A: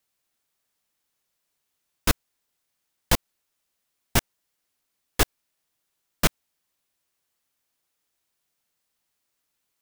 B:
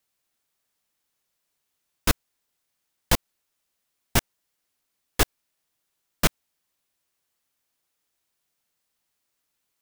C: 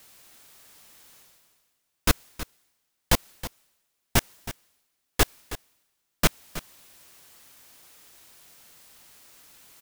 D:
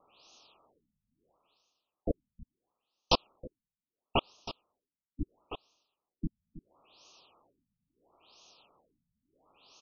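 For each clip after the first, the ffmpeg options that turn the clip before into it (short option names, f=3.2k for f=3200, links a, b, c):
-af anull
-af "areverse,acompressor=mode=upward:threshold=-33dB:ratio=2.5,areverse,aecho=1:1:320:0.188"
-af "asuperstop=centerf=1800:order=12:qfactor=1.5,bass=f=250:g=-12,treble=f=4k:g=1,afftfilt=real='re*lt(b*sr/1024,210*pow(6800/210,0.5+0.5*sin(2*PI*0.74*pts/sr)))':imag='im*lt(b*sr/1024,210*pow(6800/210,0.5+0.5*sin(2*PI*0.74*pts/sr)))':win_size=1024:overlap=0.75"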